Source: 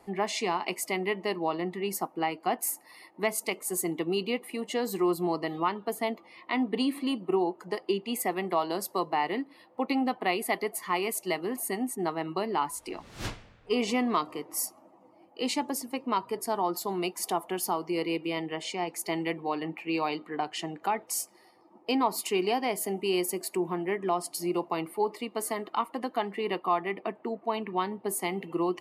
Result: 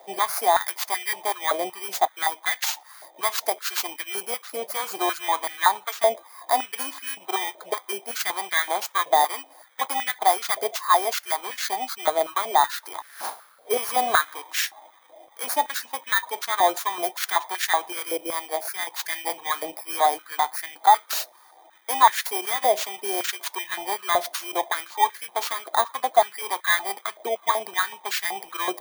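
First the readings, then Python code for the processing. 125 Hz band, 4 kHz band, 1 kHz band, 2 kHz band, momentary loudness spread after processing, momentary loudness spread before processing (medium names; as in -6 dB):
under -20 dB, +7.5 dB, +9.0 dB, +9.0 dB, 9 LU, 6 LU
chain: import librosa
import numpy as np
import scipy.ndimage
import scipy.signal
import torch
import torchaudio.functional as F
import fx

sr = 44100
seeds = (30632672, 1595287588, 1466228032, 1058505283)

y = fx.bit_reversed(x, sr, seeds[0], block=16)
y = fx.filter_held_highpass(y, sr, hz=5.3, low_hz=610.0, high_hz=1700.0)
y = y * librosa.db_to_amplitude(4.5)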